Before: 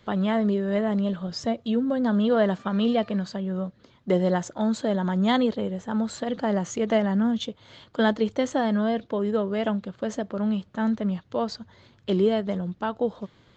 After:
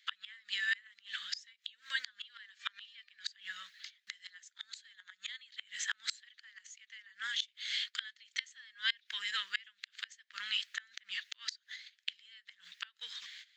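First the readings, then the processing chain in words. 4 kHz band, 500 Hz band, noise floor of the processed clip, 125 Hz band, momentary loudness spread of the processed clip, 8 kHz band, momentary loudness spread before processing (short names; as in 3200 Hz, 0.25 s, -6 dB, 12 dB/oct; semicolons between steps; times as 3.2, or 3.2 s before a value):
+0.5 dB, under -40 dB, -77 dBFS, under -40 dB, 17 LU, n/a, 8 LU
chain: gate -51 dBFS, range -18 dB; elliptic high-pass 1800 Hz, stop band 60 dB; flipped gate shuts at -35 dBFS, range -30 dB; gain +15 dB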